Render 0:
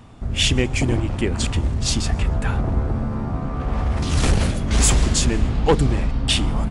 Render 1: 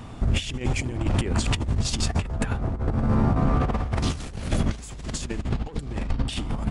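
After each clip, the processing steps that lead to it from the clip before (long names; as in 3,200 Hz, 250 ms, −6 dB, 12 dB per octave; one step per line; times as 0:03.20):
compressor whose output falls as the input rises −24 dBFS, ratio −0.5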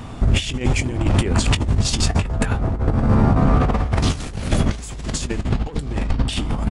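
double-tracking delay 20 ms −13.5 dB
level +6 dB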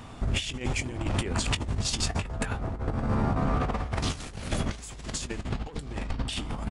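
low-shelf EQ 490 Hz −5.5 dB
level −6.5 dB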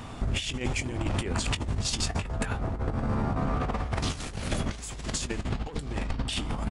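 downward compressor 2.5 to 1, threshold −30 dBFS, peak gain reduction 6.5 dB
level +3.5 dB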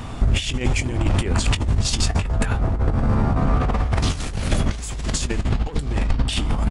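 low-shelf EQ 100 Hz +7.5 dB
level +6 dB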